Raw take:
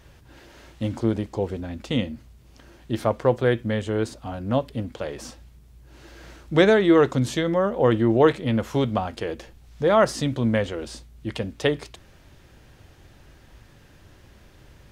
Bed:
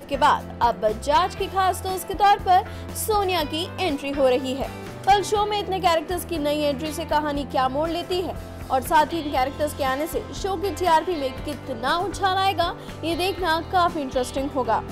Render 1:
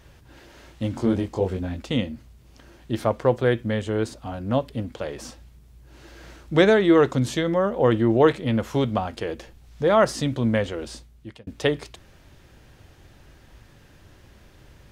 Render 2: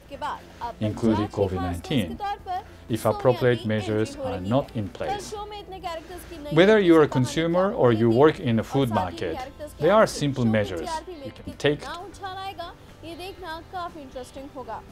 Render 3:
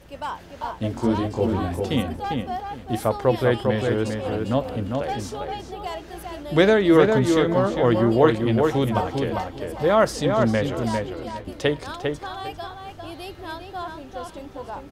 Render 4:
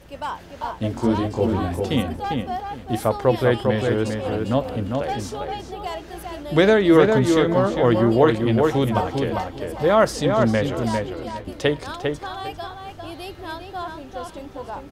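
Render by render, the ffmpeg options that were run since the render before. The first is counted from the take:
ffmpeg -i in.wav -filter_complex "[0:a]asettb=1/sr,asplit=3[link_01][link_02][link_03];[link_01]atrim=end=0.944[link_04];[link_02]atrim=start=0.94:end=1.8,asetpts=PTS-STARTPTS,afade=type=in:duration=0.004:curve=qsin,afade=type=out:start_time=0.856:duration=0.004:curve=qsin,asplit=2[link_05][link_06];[link_06]adelay=22,volume=-2.5dB[link_07];[link_05][link_07]amix=inputs=2:normalize=0,atrim=end_sample=37926[link_08];[link_03]atrim=start=1.796[link_09];[link_04][link_08]acrossfade=duration=0.004:curve1=hsin:curve2=qsin[link_10];[link_10][link_09]acrossfade=duration=0.004:curve1=qsin:curve2=hsin,asplit=2[link_11][link_12];[link_11]atrim=end=11.47,asetpts=PTS-STARTPTS,afade=type=out:start_time=10.93:duration=0.54[link_13];[link_12]atrim=start=11.47,asetpts=PTS-STARTPTS,afade=type=in:duration=0.004:curve=hsin[link_14];[link_13][link_14]concat=n=2:v=0:a=1" out.wav
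ffmpeg -i in.wav -i bed.wav -filter_complex "[1:a]volume=-13dB[link_01];[0:a][link_01]amix=inputs=2:normalize=0" out.wav
ffmpeg -i in.wav -filter_complex "[0:a]asplit=2[link_01][link_02];[link_02]adelay=400,lowpass=frequency=2800:poles=1,volume=-4dB,asplit=2[link_03][link_04];[link_04]adelay=400,lowpass=frequency=2800:poles=1,volume=0.23,asplit=2[link_05][link_06];[link_06]adelay=400,lowpass=frequency=2800:poles=1,volume=0.23[link_07];[link_01][link_03][link_05][link_07]amix=inputs=4:normalize=0" out.wav
ffmpeg -i in.wav -af "volume=1.5dB,alimiter=limit=-3dB:level=0:latency=1" out.wav

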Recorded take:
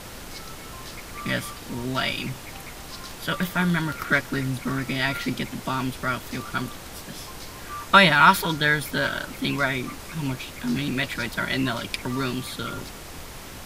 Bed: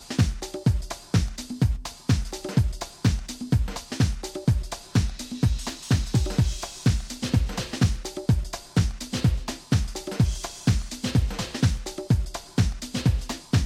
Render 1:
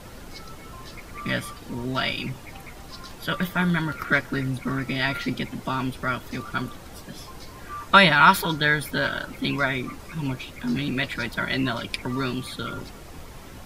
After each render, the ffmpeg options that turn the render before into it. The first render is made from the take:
ffmpeg -i in.wav -af "afftdn=noise_reduction=8:noise_floor=-40" out.wav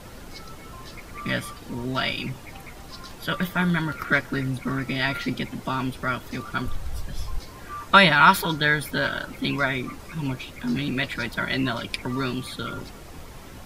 ffmpeg -i in.wav -filter_complex "[0:a]asplit=3[link_01][link_02][link_03];[link_01]afade=type=out:start_time=6.65:duration=0.02[link_04];[link_02]asubboost=boost=9:cutoff=78,afade=type=in:start_time=6.65:duration=0.02,afade=type=out:start_time=7.38:duration=0.02[link_05];[link_03]afade=type=in:start_time=7.38:duration=0.02[link_06];[link_04][link_05][link_06]amix=inputs=3:normalize=0" out.wav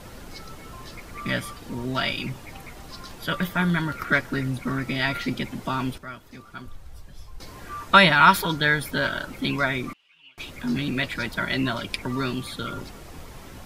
ffmpeg -i in.wav -filter_complex "[0:a]asettb=1/sr,asplit=3[link_01][link_02][link_03];[link_01]atrim=end=9.934[link_04];[link_02]atrim=start=9.93:end=10.38,asetpts=PTS-STARTPTS,afade=type=in:duration=0.004:curve=qsin,afade=type=out:start_time=0.446:duration=0.004:curve=qsin,bandpass=frequency=2900:width_type=q:width=12[link_05];[link_03]atrim=start=10.376[link_06];[link_04][link_05]acrossfade=duration=0.004:curve1=hsin:curve2=qsin[link_07];[link_07][link_06]acrossfade=duration=0.004:curve1=qsin:curve2=hsin,asplit=3[link_08][link_09][link_10];[link_08]atrim=end=5.982[link_11];[link_09]atrim=start=5.978:end=7.402,asetpts=PTS-STARTPTS,volume=-11.5dB[link_12];[link_10]atrim=start=7.398[link_13];[link_11][link_12]acrossfade=duration=0.004:curve1=hsin:curve2=hsin[link_14];[link_14][link_13]acrossfade=duration=0.004:curve1=hsin:curve2=hsin" out.wav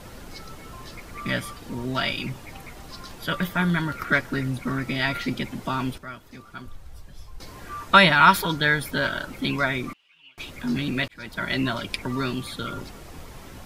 ffmpeg -i in.wav -filter_complex "[0:a]asplit=2[link_01][link_02];[link_01]atrim=end=11.08,asetpts=PTS-STARTPTS,afade=type=out:start_time=11.076:duration=0.004:curve=hsin[link_03];[link_02]atrim=start=11.08,asetpts=PTS-STARTPTS,afade=type=in:duration=0.43[link_04];[link_03][link_04]concat=n=2:v=0:a=1" out.wav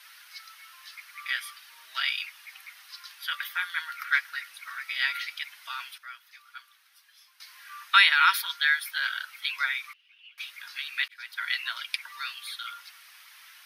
ffmpeg -i in.wav -af "highpass=frequency=1500:width=0.5412,highpass=frequency=1500:width=1.3066,equalizer=frequency=7400:width_type=o:width=0.3:gain=-14.5" out.wav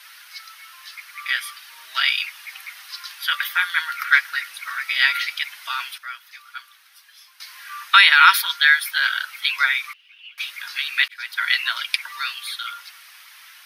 ffmpeg -i in.wav -af "dynaudnorm=framelen=340:gausssize=11:maxgain=3.5dB,alimiter=level_in=6.5dB:limit=-1dB:release=50:level=0:latency=1" out.wav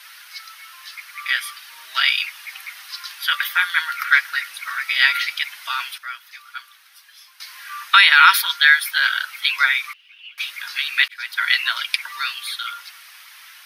ffmpeg -i in.wav -af "volume=2dB,alimiter=limit=-1dB:level=0:latency=1" out.wav

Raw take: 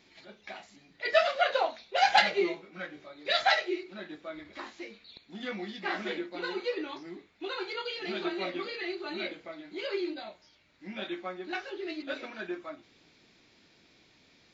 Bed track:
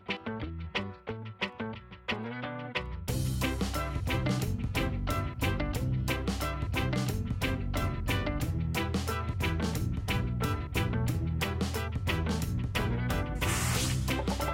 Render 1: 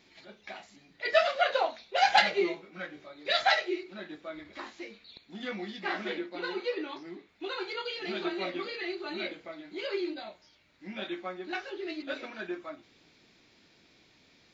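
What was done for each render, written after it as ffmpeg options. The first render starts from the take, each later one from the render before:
ffmpeg -i in.wav -filter_complex "[0:a]asettb=1/sr,asplit=3[link_01][link_02][link_03];[link_01]atrim=end=5.934[link_04];[link_02]atrim=start=5.93:end=7.29,asetpts=PTS-STARTPTS,afade=type=in:duration=0.004:curve=qsin,afade=type=out:start_time=1.356:duration=0.004:curve=qsin,highpass=130,lowpass=6200[link_05];[link_03]atrim=start=7.286[link_06];[link_04][link_05]acrossfade=duration=0.004:curve1=hsin:curve2=qsin[link_07];[link_07][link_06]acrossfade=duration=0.004:curve1=qsin:curve2=hsin" out.wav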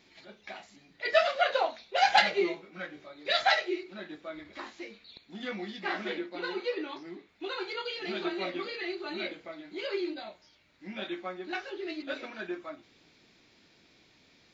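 ffmpeg -i in.wav -af anull out.wav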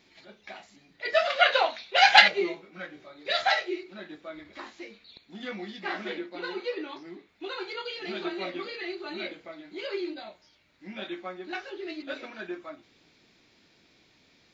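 ffmpeg -i in.wav -filter_complex "[0:a]asettb=1/sr,asplit=3[link_01][link_02][link_03];[link_01]atrim=end=1.304[link_04];[link_02]atrim=start=1.3:end=2.28,asetpts=PTS-STARTPTS,afade=type=in:duration=0.004:curve=qsin,afade=type=out:start_time=0.976:duration=0.004:curve=qsin,equalizer=frequency=2600:width=0.45:gain=10[link_05];[link_03]atrim=start=2.276[link_06];[link_04][link_05]acrossfade=duration=0.004:curve1=hsin:curve2=qsin[link_07];[link_07][link_06]acrossfade=duration=0.004:curve1=qsin:curve2=hsin,asettb=1/sr,asplit=3[link_08][link_09][link_10];[link_08]atrim=end=2.954[link_11];[link_09]atrim=start=2.95:end=3.63,asetpts=PTS-STARTPTS,afade=type=in:duration=0.004:curve=qsin,afade=type=out:start_time=0.676:duration=0.004:curve=qsin,asplit=2[link_12][link_13];[link_13]adelay=42,volume=-12dB[link_14];[link_12][link_14]amix=inputs=2:normalize=0,atrim=end_sample=29988[link_15];[link_10]atrim=start=3.626[link_16];[link_11][link_15]acrossfade=duration=0.004:curve1=hsin:curve2=qsin[link_17];[link_17][link_16]acrossfade=duration=0.004:curve1=qsin:curve2=hsin" out.wav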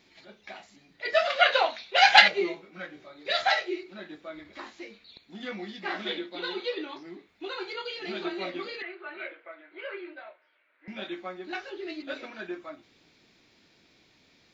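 ffmpeg -i in.wav -filter_complex "[0:a]asettb=1/sr,asplit=3[link_01][link_02][link_03];[link_01]atrim=end=5.994[link_04];[link_02]atrim=start=5.99:end=6.85,asetpts=PTS-STARTPTS,afade=type=in:duration=0.004:curve=qsin,afade=type=out:start_time=0.856:duration=0.004:curve=qsin,equalizer=frequency=3500:width=3.8:gain=11.5[link_05];[link_03]atrim=start=6.846[link_06];[link_04][link_05]acrossfade=duration=0.004:curve1=hsin:curve2=qsin[link_07];[link_07][link_06]acrossfade=duration=0.004:curve1=qsin:curve2=hsin,asettb=1/sr,asplit=3[link_08][link_09][link_10];[link_08]atrim=end=8.824[link_11];[link_09]atrim=start=8.82:end=10.88,asetpts=PTS-STARTPTS,afade=type=in:duration=0.004:curve=qsin,afade=type=out:start_time=2.056:duration=0.004:curve=qsin,highpass=frequency=420:width=0.5412,highpass=frequency=420:width=1.3066,equalizer=frequency=420:width_type=q:width=4:gain=-5,equalizer=frequency=800:width_type=q:width=4:gain=-7,equalizer=frequency=1500:width_type=q:width=4:gain=5,lowpass=frequency=2500:width=0.5412,lowpass=frequency=2500:width=1.3066[link_12];[link_10]atrim=start=10.876[link_13];[link_11][link_12]acrossfade=duration=0.004:curve1=hsin:curve2=qsin[link_14];[link_14][link_13]acrossfade=duration=0.004:curve1=qsin:curve2=hsin" out.wav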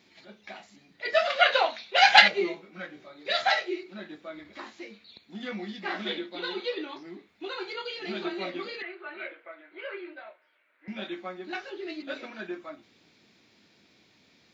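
ffmpeg -i in.wav -af "highpass=72,equalizer=frequency=210:width=5.7:gain=5" out.wav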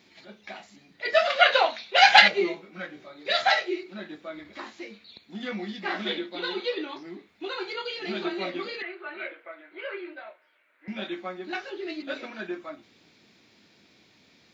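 ffmpeg -i in.wav -af "volume=2.5dB,alimiter=limit=-2dB:level=0:latency=1" out.wav

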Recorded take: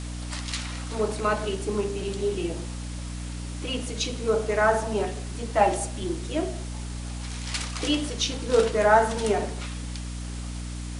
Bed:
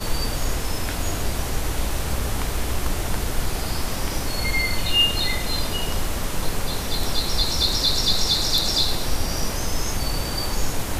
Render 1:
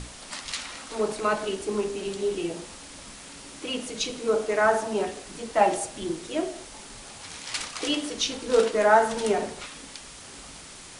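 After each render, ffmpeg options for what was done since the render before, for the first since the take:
ffmpeg -i in.wav -af "bandreject=frequency=60:width_type=h:width=6,bandreject=frequency=120:width_type=h:width=6,bandreject=frequency=180:width_type=h:width=6,bandreject=frequency=240:width_type=h:width=6,bandreject=frequency=300:width_type=h:width=6" out.wav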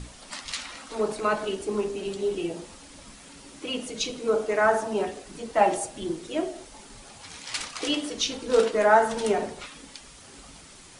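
ffmpeg -i in.wav -af "afftdn=noise_reduction=6:noise_floor=-44" out.wav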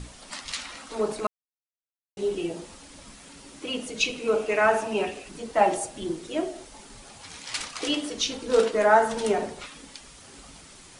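ffmpeg -i in.wav -filter_complex "[0:a]asettb=1/sr,asplit=3[link_01][link_02][link_03];[link_01]atrim=end=3.994[link_04];[link_02]atrim=start=3.99:end=5.29,asetpts=PTS-STARTPTS,afade=type=in:duration=0.004:curve=qsin,afade=type=out:start_time=1.296:duration=0.004:curve=qsin,equalizer=frequency=2600:width_type=o:width=0.35:gain=13.5[link_05];[link_03]atrim=start=5.286[link_06];[link_04][link_05]acrossfade=duration=0.004:curve1=hsin:curve2=qsin[link_07];[link_07][link_06]acrossfade=duration=0.004:curve1=qsin:curve2=hsin,asplit=3[link_08][link_09][link_10];[link_08]atrim=end=1.27,asetpts=PTS-STARTPTS,afade=type=out:start_time=1.266:duration=0.004:curve=hsin[link_11];[link_09]atrim=start=1.27:end=2.17,asetpts=PTS-STARTPTS,volume=0[link_12];[link_10]atrim=start=2.17,asetpts=PTS-STARTPTS,afade=type=in:duration=0.004:curve=hsin[link_13];[link_11][link_12][link_13]concat=n=3:v=0:a=1" out.wav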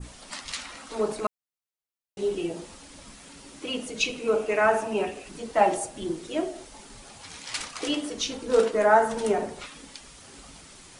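ffmpeg -i in.wav -af "adynamicequalizer=threshold=0.00708:dfrequency=3800:dqfactor=0.75:tfrequency=3800:tqfactor=0.75:attack=5:release=100:ratio=0.375:range=2.5:mode=cutabove:tftype=bell" out.wav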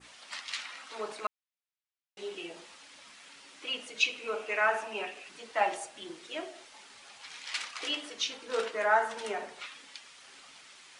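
ffmpeg -i in.wav -af "bandpass=frequency=2400:width_type=q:width=0.76:csg=0" out.wav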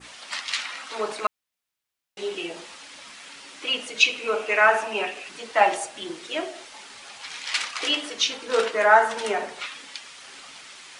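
ffmpeg -i in.wav -af "volume=9.5dB,alimiter=limit=-3dB:level=0:latency=1" out.wav

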